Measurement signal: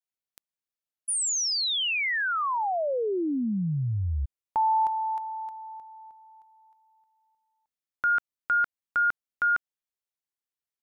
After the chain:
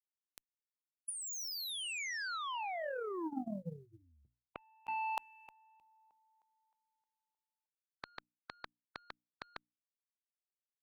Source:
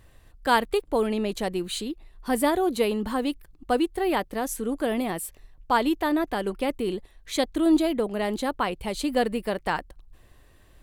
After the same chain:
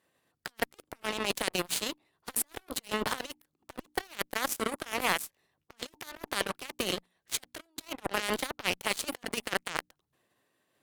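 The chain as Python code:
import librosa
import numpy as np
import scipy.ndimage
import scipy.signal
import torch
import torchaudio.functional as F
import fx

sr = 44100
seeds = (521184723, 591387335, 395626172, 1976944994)

y = fx.spec_clip(x, sr, under_db=17)
y = scipy.signal.sosfilt(scipy.signal.butter(2, 170.0, 'highpass', fs=sr, output='sos'), y)
y = fx.hum_notches(y, sr, base_hz=60, count=5)
y = fx.over_compress(y, sr, threshold_db=-29.0, ratio=-0.5)
y = fx.cheby_harmonics(y, sr, harmonics=(2, 3, 5, 7), levels_db=(-38, -25, -20, -14), full_scale_db=-11.5)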